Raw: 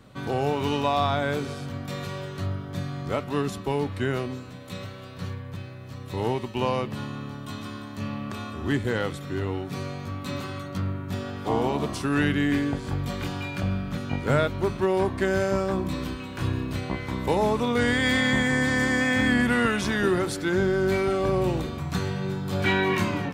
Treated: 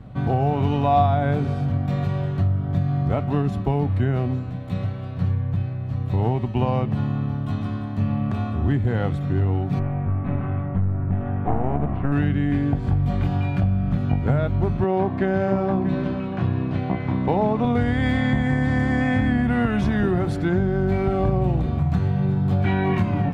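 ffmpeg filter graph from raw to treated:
-filter_complex "[0:a]asettb=1/sr,asplit=3[a][b][c];[a]atrim=end=9.794[d];[b]atrim=start=9.79:end=12.12,asetpts=PTS-STARTPTS,afade=t=in:d=0.004:c=qsin,afade=t=out:st=2.326:d=0.004:c=qsin,aeval=exprs='clip(val(0),-1,0.02)':c=same,lowpass=f=2.3k:w=0.5412,lowpass=f=2.3k:w=1.3066[e];[c]atrim=start=12.116[f];[d][e]acrossfade=d=0.004:c1=hsin:c2=qsin[g];[g][f]acrossfade=d=0.004:c1=qsin:c2=hsin,asettb=1/sr,asplit=3[h][i][j];[h]atrim=end=14.844[k];[i]atrim=start=14.84:end=17.65,asetpts=PTS-STARTPTS,afade=t=in:d=0.004:c=qsin,afade=t=out:st=2.806:d=0.004:c=qsin,highpass=160,lowpass=4.8k,aecho=1:1:636:0.237,atrim=end_sample=123921[l];[j]atrim=start=17.646[m];[k][l]acrossfade=d=0.004:c1=hsin:c2=qsin[n];[n][m]acrossfade=d=0.004:c1=qsin:c2=hsin,bass=f=250:g=15,treble=f=4k:g=-13,acompressor=threshold=-17dB:ratio=6,equalizer=f=720:t=o:w=0.37:g=11"

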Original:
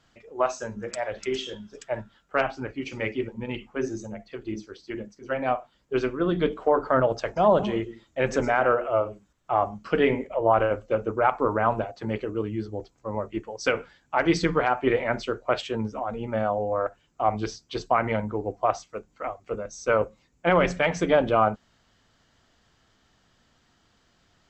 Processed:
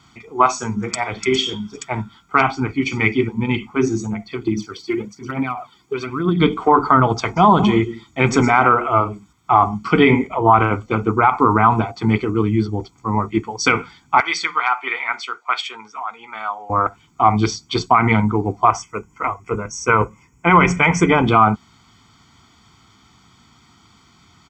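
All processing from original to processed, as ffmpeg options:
-filter_complex "[0:a]asettb=1/sr,asplit=3[a][b][c];[a]atrim=end=4.474[d];[b]atrim=start=4.47:end=6.4,asetpts=PTS-STARTPTS,afade=t=in:d=0.004:c=qsin,afade=t=out:st=1.926:d=0.004:c=qsin,highpass=99,acompressor=threshold=-32dB:ratio=6:attack=3.2:release=140:knee=1:detection=peak,aphaser=in_gain=1:out_gain=1:delay=2.9:decay=0.57:speed=1.1:type=triangular[e];[c]atrim=start=6.396[f];[d][e]acrossfade=d=0.004:c1=hsin:c2=qsin[g];[g][f]acrossfade=d=0.004:c1=qsin:c2=hsin,asettb=1/sr,asplit=3[h][i][j];[h]atrim=end=14.204[k];[i]atrim=start=14.2:end=16.7,asetpts=PTS-STARTPTS,afade=t=in:d=0.004:c=qsin,afade=t=out:st=2.496:d=0.004:c=qsin,highpass=1.3k,highshelf=f=3.1k:g=-8[l];[j]atrim=start=16.696[m];[k][l]acrossfade=d=0.004:c1=hsin:c2=qsin[n];[n][m]acrossfade=d=0.004:c1=qsin:c2=hsin,asettb=1/sr,asplit=3[o][p][q];[o]atrim=end=18.694[r];[p]atrim=start=18.69:end=21.26,asetpts=PTS-STARTPTS,afade=t=in:d=0.004:c=qsin,afade=t=out:st=2.566:d=0.004:c=qsin,asuperstop=centerf=4000:order=4:qfactor=1.8,aecho=1:1:2:0.33,atrim=end_sample=113337[s];[q]atrim=start=21.256[t];[r][s]acrossfade=d=0.004:c1=hsin:c2=qsin[u];[u][t]acrossfade=d=0.004:c1=qsin:c2=hsin,highpass=78,aecho=1:1:0.9:0.96,alimiter=level_in=11dB:limit=-1dB:release=50:level=0:latency=1,volume=-1dB"

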